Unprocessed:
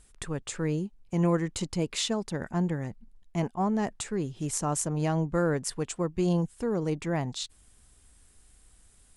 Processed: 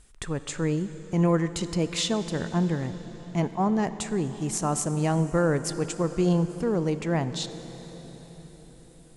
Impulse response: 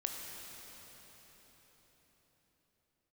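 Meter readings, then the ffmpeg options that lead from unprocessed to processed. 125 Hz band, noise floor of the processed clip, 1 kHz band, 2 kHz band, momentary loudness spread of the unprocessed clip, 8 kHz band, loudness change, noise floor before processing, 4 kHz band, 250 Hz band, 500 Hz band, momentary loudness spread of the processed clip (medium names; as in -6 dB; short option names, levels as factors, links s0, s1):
+3.5 dB, -50 dBFS, +3.0 dB, +3.0 dB, 8 LU, +1.5 dB, +3.0 dB, -60 dBFS, +3.0 dB, +3.5 dB, +3.5 dB, 15 LU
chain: -filter_complex "[0:a]asplit=2[s0][s1];[1:a]atrim=start_sample=2205,lowpass=8800[s2];[s1][s2]afir=irnorm=-1:irlink=0,volume=0.473[s3];[s0][s3]amix=inputs=2:normalize=0"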